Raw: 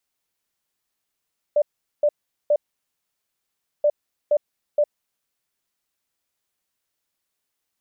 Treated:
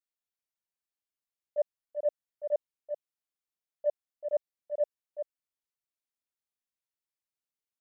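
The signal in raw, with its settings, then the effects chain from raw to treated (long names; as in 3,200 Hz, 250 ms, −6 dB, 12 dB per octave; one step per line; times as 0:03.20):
beeps in groups sine 591 Hz, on 0.06 s, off 0.41 s, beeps 3, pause 1.28 s, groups 2, −14 dBFS
noise gate −17 dBFS, range −18 dB
on a send: single-tap delay 386 ms −7.5 dB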